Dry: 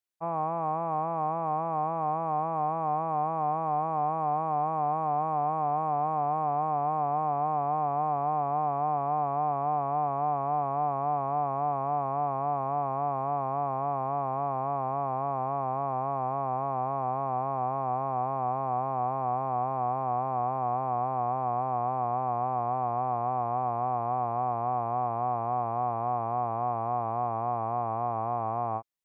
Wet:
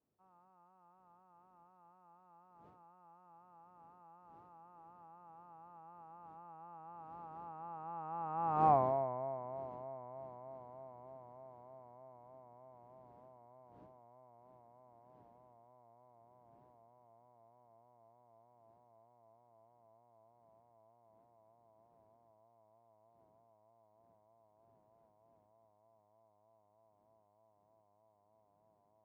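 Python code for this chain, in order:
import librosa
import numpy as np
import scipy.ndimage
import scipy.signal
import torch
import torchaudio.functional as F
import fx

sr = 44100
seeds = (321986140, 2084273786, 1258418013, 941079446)

y = fx.dmg_wind(x, sr, seeds[0], corner_hz=400.0, level_db=-43.0)
y = fx.doppler_pass(y, sr, speed_mps=37, closest_m=3.9, pass_at_s=8.71)
y = scipy.signal.sosfilt(scipy.signal.butter(2, 84.0, 'highpass', fs=sr, output='sos'), y)
y = y * 10.0 ** (1.0 / 20.0)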